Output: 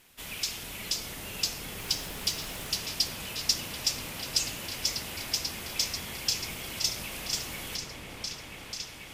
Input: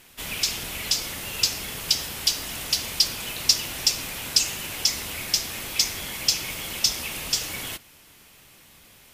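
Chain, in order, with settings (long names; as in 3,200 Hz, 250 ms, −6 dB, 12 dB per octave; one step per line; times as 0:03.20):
echo whose low-pass opens from repeat to repeat 489 ms, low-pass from 750 Hz, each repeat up 1 octave, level 0 dB
surface crackle 110 per second −49 dBFS
0:01.78–0:02.70: background noise pink −40 dBFS
level −7.5 dB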